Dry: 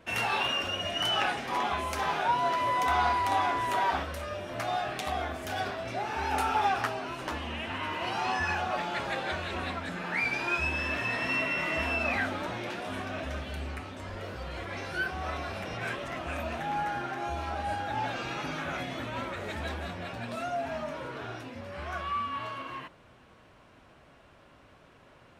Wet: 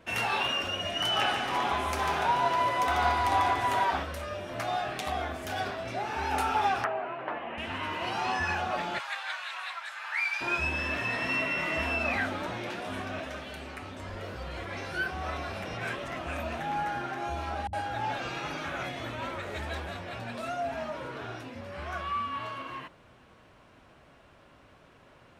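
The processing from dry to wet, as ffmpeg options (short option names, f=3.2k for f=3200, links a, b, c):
-filter_complex "[0:a]asettb=1/sr,asplit=3[a][b][c];[a]atrim=end=1.024[d];[b]atrim=start=1.02:end=3.85,asetpts=PTS-STARTPTS,afade=t=in:d=0.004:c=qsin,afade=t=out:st=2.826:d=0.004:c=qsin,aecho=1:1:145|290|435|580|725|870:0.501|0.261|0.136|0.0705|0.0366|0.0191,atrim=end_sample=124803[e];[c]atrim=start=3.846[f];[d][e]acrossfade=d=0.004:c1=hsin:c2=qsin[g];[g][f]acrossfade=d=0.004:c1=qsin:c2=hsin,asettb=1/sr,asplit=3[h][i][j];[h]atrim=end=6.844[k];[i]atrim=start=6.84:end=7.58,asetpts=PTS-STARTPTS,afade=t=in:d=0.004:c=qsin,afade=t=out:st=0.736:d=0.004:c=qsin,highpass=f=150:w=0.5412,highpass=f=150:w=1.3066,equalizer=f=190:t=q:w=4:g=-7,equalizer=f=270:t=q:w=4:g=-8,equalizer=f=690:t=q:w=4:g=7,lowpass=f=2.4k:w=0.5412,lowpass=f=2.4k:w=1.3066[l];[j]atrim=start=7.576[m];[k][l]acrossfade=d=0.004:c1=hsin:c2=qsin[n];[n][m]acrossfade=d=0.004:c1=qsin:c2=hsin,asplit=3[o][p][q];[o]afade=t=out:st=8.98:d=0.02[r];[p]highpass=f=940:w=0.5412,highpass=f=940:w=1.3066,afade=t=in:st=8.98:d=0.02,afade=t=out:st=10.4:d=0.02[s];[q]afade=t=in:st=10.4:d=0.02[t];[r][s][t]amix=inputs=3:normalize=0,asettb=1/sr,asplit=3[u][v][w];[u]atrim=end=13.204[x];[v]atrim=start=13.2:end=13.82,asetpts=PTS-STARTPTS,afade=t=in:d=0.004:c=qsin,afade=t=out:st=0.616:d=0.004:c=qsin,highpass=f=240:p=1[y];[w]atrim=start=13.816[z];[x][y]acrossfade=d=0.004:c1=hsin:c2=qsin[aa];[aa][z]acrossfade=d=0.004:c1=qsin:c2=hsin,asettb=1/sr,asplit=3[ab][ac][ad];[ab]atrim=end=17.674[ae];[ac]atrim=start=17.67:end=20.94,asetpts=PTS-STARTPTS,afade=t=in:d=0.004:c=qsin,afade=t=out:st=3.266:d=0.004:c=qsin,acrossover=split=210[af][ag];[ag]adelay=60[ah];[af][ah]amix=inputs=2:normalize=0,atrim=end_sample=144207[ai];[ad]atrim=start=20.936[aj];[ae][ai]acrossfade=d=0.004:c1=hsin:c2=qsin[ak];[ak][aj]acrossfade=d=0.004:c1=qsin:c2=hsin"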